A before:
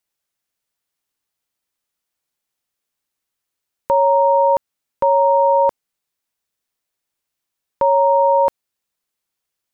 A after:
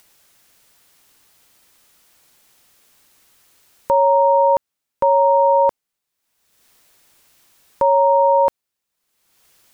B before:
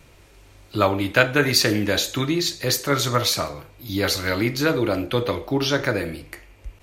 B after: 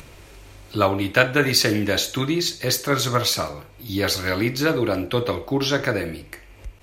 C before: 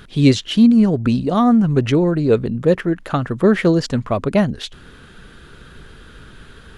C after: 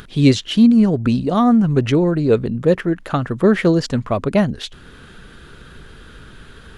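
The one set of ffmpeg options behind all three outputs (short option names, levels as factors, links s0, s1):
-af "acompressor=mode=upward:threshold=0.0158:ratio=2.5"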